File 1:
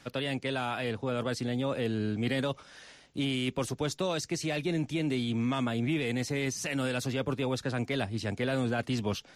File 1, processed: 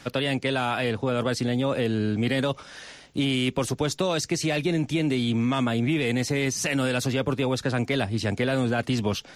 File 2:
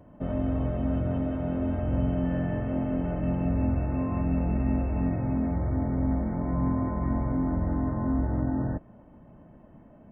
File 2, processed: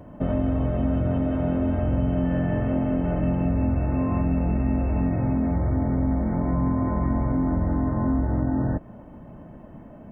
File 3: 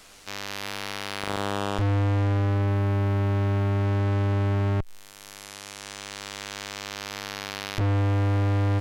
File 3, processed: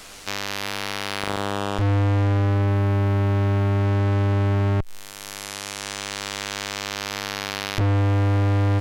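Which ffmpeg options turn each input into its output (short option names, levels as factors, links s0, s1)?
-af "acompressor=threshold=0.0316:ratio=2.5,volume=2.66"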